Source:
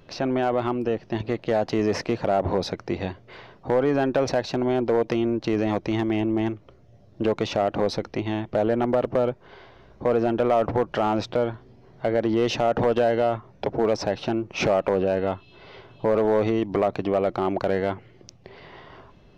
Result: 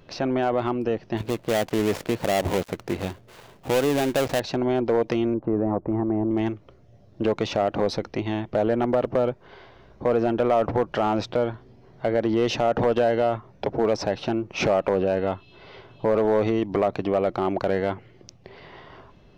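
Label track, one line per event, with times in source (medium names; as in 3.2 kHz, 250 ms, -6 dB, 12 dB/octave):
1.170000	4.400000	dead-time distortion of 0.24 ms
5.340000	6.310000	low-pass 1.2 kHz 24 dB/octave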